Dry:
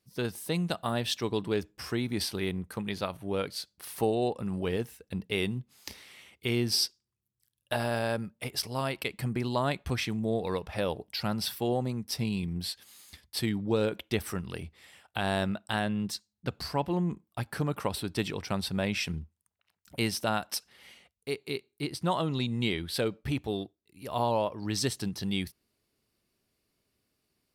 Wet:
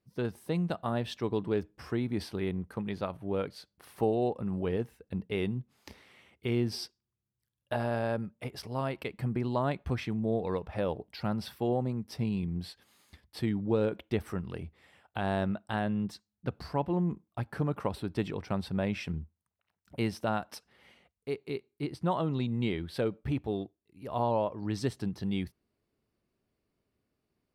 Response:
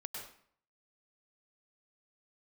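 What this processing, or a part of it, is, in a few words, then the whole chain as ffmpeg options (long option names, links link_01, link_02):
through cloth: -af "highshelf=frequency=2700:gain=-16"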